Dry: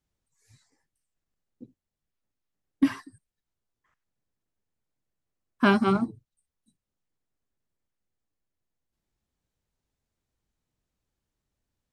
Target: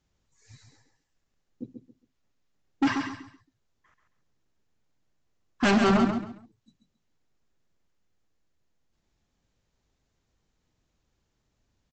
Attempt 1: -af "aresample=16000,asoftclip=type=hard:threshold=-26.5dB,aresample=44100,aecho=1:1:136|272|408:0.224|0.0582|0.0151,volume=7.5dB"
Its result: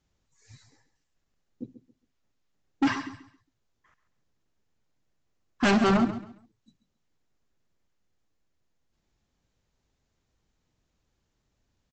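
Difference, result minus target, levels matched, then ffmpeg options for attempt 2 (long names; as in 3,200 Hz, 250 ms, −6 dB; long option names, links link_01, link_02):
echo-to-direct −6.5 dB
-af "aresample=16000,asoftclip=type=hard:threshold=-26.5dB,aresample=44100,aecho=1:1:136|272|408:0.473|0.123|0.032,volume=7.5dB"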